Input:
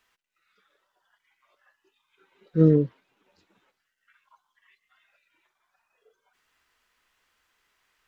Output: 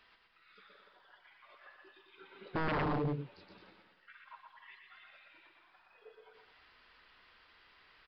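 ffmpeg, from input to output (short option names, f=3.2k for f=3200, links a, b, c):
-filter_complex "[0:a]asplit=2[a][b];[b]acompressor=threshold=-29dB:ratio=6,volume=1dB[c];[a][c]amix=inputs=2:normalize=0,alimiter=limit=-16.5dB:level=0:latency=1:release=25,aecho=1:1:120|216|292.8|354.2|403.4:0.631|0.398|0.251|0.158|0.1,aeval=exprs='0.0398*(abs(mod(val(0)/0.0398+3,4)-2)-1)':c=same,aresample=11025,aresample=44100"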